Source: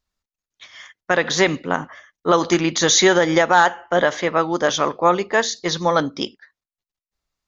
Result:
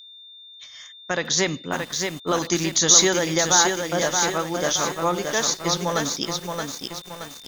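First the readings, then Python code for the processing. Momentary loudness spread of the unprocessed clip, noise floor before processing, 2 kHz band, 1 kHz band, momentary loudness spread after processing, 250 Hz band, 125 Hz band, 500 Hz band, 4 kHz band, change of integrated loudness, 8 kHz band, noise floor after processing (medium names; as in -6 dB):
11 LU, under -85 dBFS, -6.0 dB, -6.5 dB, 18 LU, -5.0 dB, -2.0 dB, -6.0 dB, +0.5 dB, -2.5 dB, no reading, -45 dBFS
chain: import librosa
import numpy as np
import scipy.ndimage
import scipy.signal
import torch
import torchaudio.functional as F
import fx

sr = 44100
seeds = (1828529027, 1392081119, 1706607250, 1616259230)

y = x + 10.0 ** (-40.0 / 20.0) * np.sin(2.0 * np.pi * 3600.0 * np.arange(len(x)) / sr)
y = fx.bass_treble(y, sr, bass_db=6, treble_db=14)
y = fx.echo_crushed(y, sr, ms=624, feedback_pct=55, bits=5, wet_db=-4.0)
y = y * 10.0 ** (-8.0 / 20.0)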